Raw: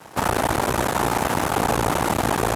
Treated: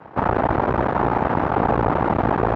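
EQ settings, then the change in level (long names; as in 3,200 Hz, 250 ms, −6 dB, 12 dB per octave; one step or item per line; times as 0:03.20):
low-pass filter 1,500 Hz 12 dB per octave
high-frequency loss of the air 110 metres
+3.0 dB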